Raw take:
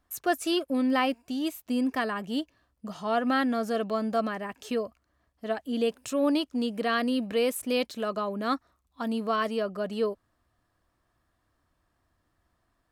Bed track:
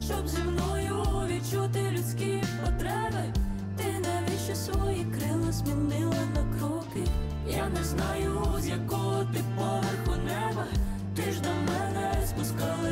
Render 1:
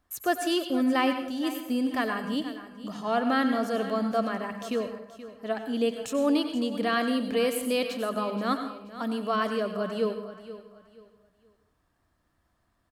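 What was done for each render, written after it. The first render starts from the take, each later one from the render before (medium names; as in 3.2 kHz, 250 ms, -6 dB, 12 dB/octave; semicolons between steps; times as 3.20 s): feedback delay 478 ms, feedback 29%, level -14.5 dB; plate-style reverb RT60 0.54 s, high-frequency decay 0.8×, pre-delay 80 ms, DRR 7.5 dB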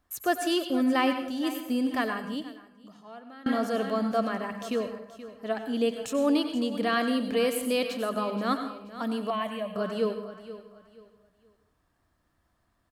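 2.01–3.46 s: fade out quadratic, to -23 dB; 9.30–9.76 s: static phaser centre 1.4 kHz, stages 6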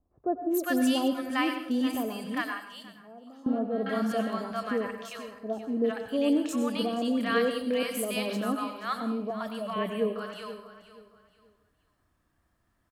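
three bands offset in time lows, mids, highs 400/430 ms, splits 790/4400 Hz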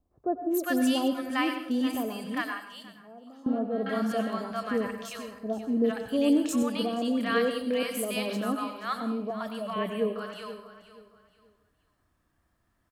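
4.74–6.63 s: tone controls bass +6 dB, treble +5 dB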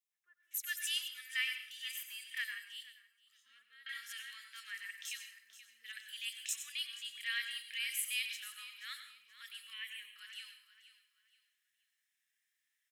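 elliptic high-pass 1.9 kHz, stop band 60 dB; band-stop 4.5 kHz, Q 5.7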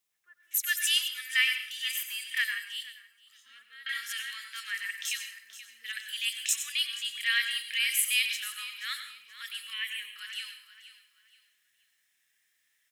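trim +10.5 dB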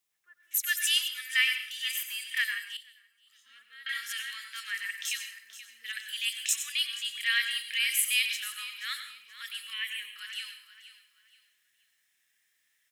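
2.77–3.82 s: fade in, from -12.5 dB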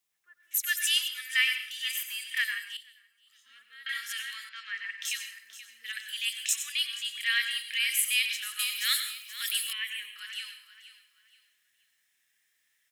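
4.49–5.02 s: distance through air 180 m; 6.19–7.88 s: bass shelf 320 Hz -7 dB; 8.59–9.73 s: tilt EQ +5 dB/octave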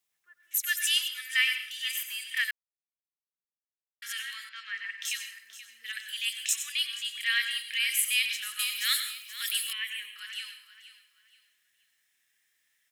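2.51–4.02 s: mute; 8.17–9.21 s: bass shelf 280 Hz +9 dB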